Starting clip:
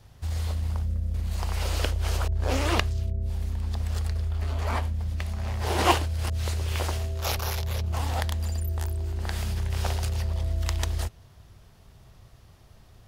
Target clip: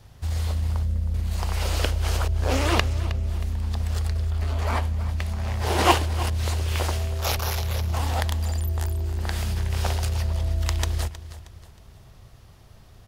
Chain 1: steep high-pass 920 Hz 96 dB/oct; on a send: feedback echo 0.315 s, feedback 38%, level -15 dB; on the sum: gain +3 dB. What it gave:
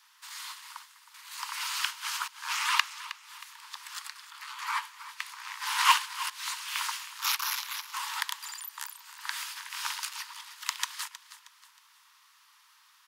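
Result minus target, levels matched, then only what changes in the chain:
1000 Hz band +3.0 dB
remove: steep high-pass 920 Hz 96 dB/oct

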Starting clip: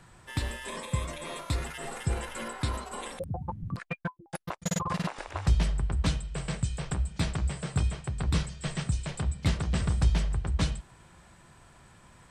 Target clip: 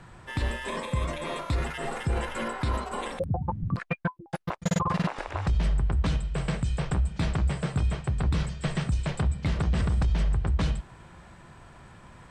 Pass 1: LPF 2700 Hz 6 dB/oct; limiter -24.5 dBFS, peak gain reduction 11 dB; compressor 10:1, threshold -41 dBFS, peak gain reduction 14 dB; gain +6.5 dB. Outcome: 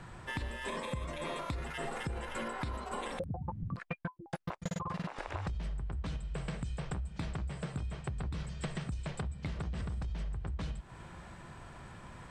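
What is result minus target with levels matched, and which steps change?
compressor: peak gain reduction +14 dB
remove: compressor 10:1, threshold -41 dBFS, peak gain reduction 14 dB

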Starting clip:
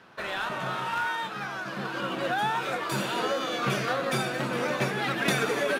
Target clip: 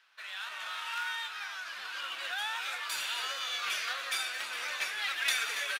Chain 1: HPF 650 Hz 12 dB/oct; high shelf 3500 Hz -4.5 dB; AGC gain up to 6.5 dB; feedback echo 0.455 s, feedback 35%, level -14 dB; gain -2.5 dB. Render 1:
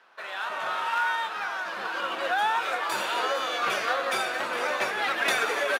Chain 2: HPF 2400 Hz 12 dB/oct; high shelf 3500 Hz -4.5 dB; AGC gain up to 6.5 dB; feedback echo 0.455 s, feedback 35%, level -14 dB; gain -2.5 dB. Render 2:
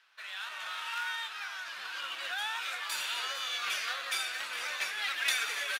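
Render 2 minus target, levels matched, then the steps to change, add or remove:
echo 0.176 s late
change: feedback echo 0.279 s, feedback 35%, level -14 dB

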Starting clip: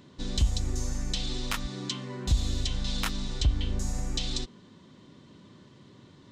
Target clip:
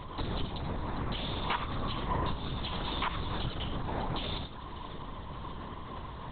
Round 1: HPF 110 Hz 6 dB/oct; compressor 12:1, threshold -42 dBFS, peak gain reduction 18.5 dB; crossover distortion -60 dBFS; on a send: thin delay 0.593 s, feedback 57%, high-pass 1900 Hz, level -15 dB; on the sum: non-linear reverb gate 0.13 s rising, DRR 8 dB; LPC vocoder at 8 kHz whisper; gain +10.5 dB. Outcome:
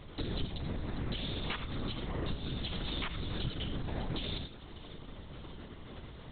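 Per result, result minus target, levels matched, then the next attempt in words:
1000 Hz band -8.5 dB; crossover distortion: distortion +12 dB
HPF 110 Hz 6 dB/oct; compressor 12:1, threshold -42 dBFS, peak gain reduction 18.5 dB; bell 980 Hz +13 dB 0.88 oct; crossover distortion -60 dBFS; on a send: thin delay 0.593 s, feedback 57%, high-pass 1900 Hz, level -15 dB; on the sum: non-linear reverb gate 0.13 s rising, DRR 8 dB; LPC vocoder at 8 kHz whisper; gain +10.5 dB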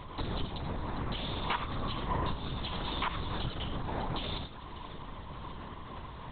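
crossover distortion: distortion +10 dB
HPF 110 Hz 6 dB/oct; compressor 12:1, threshold -42 dBFS, peak gain reduction 18.5 dB; bell 980 Hz +13 dB 0.88 oct; crossover distortion -70.5 dBFS; on a send: thin delay 0.593 s, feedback 57%, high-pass 1900 Hz, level -15 dB; on the sum: non-linear reverb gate 0.13 s rising, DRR 8 dB; LPC vocoder at 8 kHz whisper; gain +10.5 dB

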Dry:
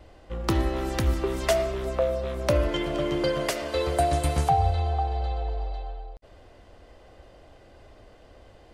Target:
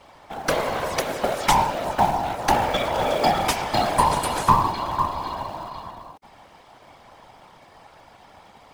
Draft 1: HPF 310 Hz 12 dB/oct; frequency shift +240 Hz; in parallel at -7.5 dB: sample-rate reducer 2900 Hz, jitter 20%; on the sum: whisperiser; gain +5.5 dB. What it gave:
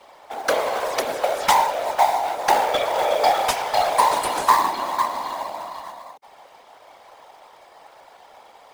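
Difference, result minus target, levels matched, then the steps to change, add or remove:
sample-rate reducer: distortion -16 dB
change: sample-rate reducer 970 Hz, jitter 20%

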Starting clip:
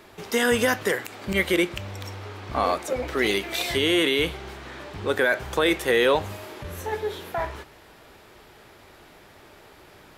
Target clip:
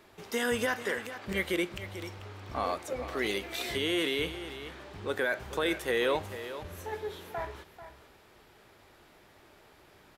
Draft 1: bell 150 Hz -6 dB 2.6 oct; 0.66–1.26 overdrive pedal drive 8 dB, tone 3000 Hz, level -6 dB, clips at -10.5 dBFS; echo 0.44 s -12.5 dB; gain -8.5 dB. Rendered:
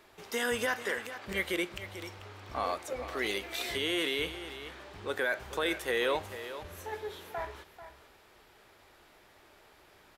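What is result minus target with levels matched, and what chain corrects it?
125 Hz band -4.0 dB
0.66–1.26 overdrive pedal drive 8 dB, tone 3000 Hz, level -6 dB, clips at -10.5 dBFS; echo 0.44 s -12.5 dB; gain -8.5 dB

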